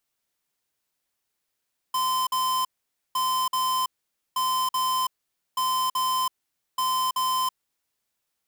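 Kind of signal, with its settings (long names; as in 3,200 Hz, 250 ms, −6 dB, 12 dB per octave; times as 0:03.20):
beeps in groups square 1,030 Hz, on 0.33 s, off 0.05 s, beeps 2, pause 0.50 s, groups 5, −24.5 dBFS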